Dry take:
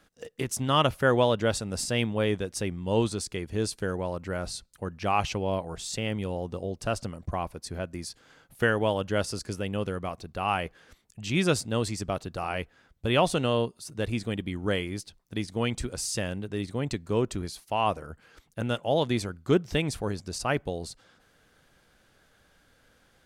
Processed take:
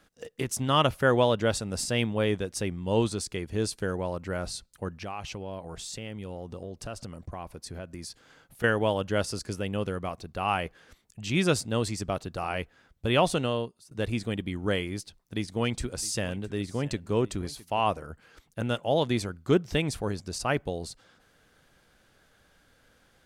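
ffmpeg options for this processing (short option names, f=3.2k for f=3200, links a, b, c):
-filter_complex "[0:a]asettb=1/sr,asplit=3[a][b][c];[a]atrim=end=4.944[d];[b]atrim=start=4.94:end=8.64,asetpts=PTS-STARTPTS,afade=t=in:d=0.004:c=qsin,afade=t=out:st=3.696:d=0.004:c=qsin,acompressor=threshold=-36dB:ratio=3:attack=3.2:release=140:knee=1:detection=peak[e];[c]atrim=start=8.636[f];[d][e]acrossfade=d=0.004:c1=hsin:c2=qsin[g];[g][f]acrossfade=d=0.004:c1=qsin:c2=hsin,asettb=1/sr,asplit=3[h][i][j];[h]atrim=end=14.924[k];[i]atrim=start=14.92:end=17.8,asetpts=PTS-STARTPTS,afade=t=in:d=0.004:c=qsin,afade=t=out:st=2.876:d=0.004:c=qsin,aecho=1:1:662:0.1,atrim=end_sample=127008[l];[j]atrim=start=17.796[m];[k][l]acrossfade=d=0.004:c1=hsin:c2=qsin[n];[n][m]acrossfade=d=0.004:c1=qsin:c2=hsin,asplit=2[o][p];[o]atrim=end=13.91,asetpts=PTS-STARTPTS,afade=t=out:st=13.32:d=0.59:silence=0.133352[q];[p]atrim=start=13.91,asetpts=PTS-STARTPTS,afade=t=in:d=0.004:c=hsin:silence=0.133352[r];[q][r]concat=n=2:v=0:a=1"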